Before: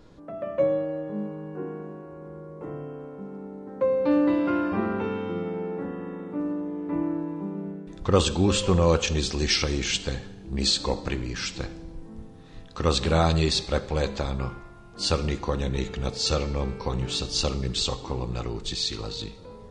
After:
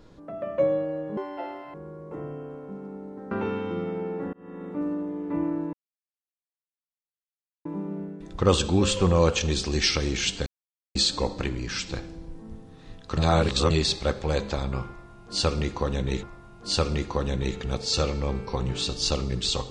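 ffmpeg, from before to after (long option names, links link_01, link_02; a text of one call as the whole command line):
ffmpeg -i in.wav -filter_complex "[0:a]asplit=11[link_01][link_02][link_03][link_04][link_05][link_06][link_07][link_08][link_09][link_10][link_11];[link_01]atrim=end=1.174[link_12];[link_02]atrim=start=1.17:end=2.24,asetpts=PTS-STARTPTS,asetrate=82467,aresample=44100[link_13];[link_03]atrim=start=2.236:end=3.812[link_14];[link_04]atrim=start=4.898:end=5.92,asetpts=PTS-STARTPTS,afade=type=out:start_time=1.018:duration=0.004:curve=hsin[link_15];[link_05]atrim=start=5.92:end=7.32,asetpts=PTS-STARTPTS,afade=type=in:duration=0.33,afade=type=out:start_time=1.396:duration=0.004:curve=hsin,apad=pad_dur=1.92[link_16];[link_06]atrim=start=7.32:end=10.13,asetpts=PTS-STARTPTS,afade=type=in:duration=0.004:curve=hsin,afade=type=out:start_time=2.806:duration=0.004:curve=hsin[link_17];[link_07]atrim=start=10.13:end=10.62,asetpts=PTS-STARTPTS,volume=0[link_18];[link_08]atrim=start=10.62:end=12.842,asetpts=PTS-STARTPTS,afade=type=in:duration=0.004:curve=hsin[link_19];[link_09]atrim=start=12.838:end=13.372,asetpts=PTS-STARTPTS,areverse[link_20];[link_10]atrim=start=13.368:end=15.902[link_21];[link_11]atrim=start=14.558[link_22];[link_12][link_13]acrossfade=duration=0.004:curve1=hsin:curve2=hsin[link_23];[link_23][link_14]acrossfade=duration=0.004:curve1=hsin:curve2=hsin[link_24];[link_15][link_16][link_17][link_18][link_19]concat=n=5:v=0:a=1[link_25];[link_24][link_25]acrossfade=duration=0.004:curve1=hsin:curve2=hsin[link_26];[link_26][link_20]acrossfade=duration=0.004:curve1=hsin:curve2=hsin[link_27];[link_27][link_21]acrossfade=duration=0.004:curve1=hsin:curve2=hsin[link_28];[link_28][link_22]acrossfade=duration=0.004:curve1=hsin:curve2=hsin" out.wav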